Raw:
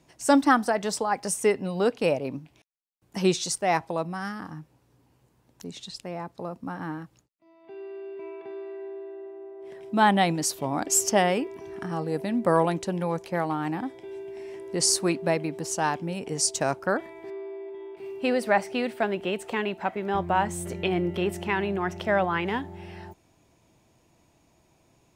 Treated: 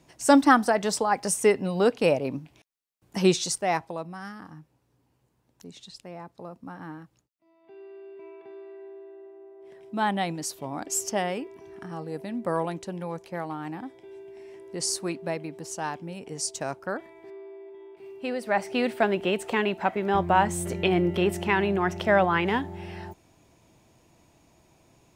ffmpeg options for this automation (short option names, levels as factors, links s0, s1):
-af "volume=3.55,afade=t=out:st=3.3:d=0.7:silence=0.398107,afade=t=in:st=18.44:d=0.42:silence=0.354813"